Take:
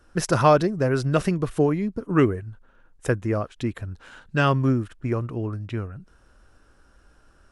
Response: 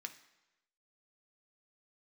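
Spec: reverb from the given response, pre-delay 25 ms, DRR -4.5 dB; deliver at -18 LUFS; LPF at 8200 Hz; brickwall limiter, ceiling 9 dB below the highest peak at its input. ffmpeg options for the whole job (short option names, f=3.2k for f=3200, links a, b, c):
-filter_complex "[0:a]lowpass=8.2k,alimiter=limit=-13dB:level=0:latency=1,asplit=2[a][b];[1:a]atrim=start_sample=2205,adelay=25[c];[b][c]afir=irnorm=-1:irlink=0,volume=7.5dB[d];[a][d]amix=inputs=2:normalize=0,volume=5dB"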